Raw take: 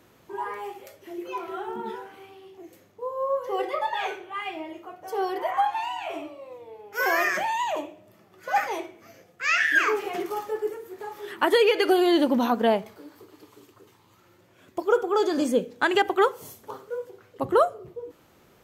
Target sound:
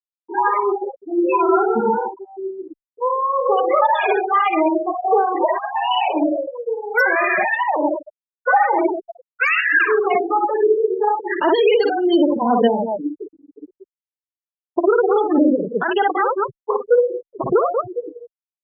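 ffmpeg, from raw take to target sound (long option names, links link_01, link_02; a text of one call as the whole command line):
ffmpeg -i in.wav -filter_complex "[0:a]aecho=1:1:55.39|186.6:0.631|0.251,acompressor=threshold=-29dB:ratio=10,afftfilt=real='re*gte(hypot(re,im),0.0355)':imag='im*gte(hypot(re,im),0.0355)':win_size=1024:overlap=0.75,alimiter=level_in=25.5dB:limit=-1dB:release=50:level=0:latency=1,asplit=2[link_01][link_02];[link_02]adelay=2.4,afreqshift=1.2[link_03];[link_01][link_03]amix=inputs=2:normalize=1,volume=-4.5dB" out.wav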